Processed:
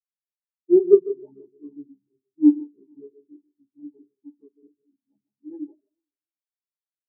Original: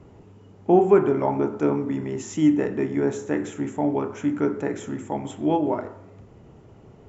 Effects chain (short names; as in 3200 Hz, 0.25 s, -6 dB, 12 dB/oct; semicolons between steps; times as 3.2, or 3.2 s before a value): half-waves squared off; echo with dull and thin repeats by turns 0.148 s, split 1500 Hz, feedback 70%, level -5 dB; spectral expander 4:1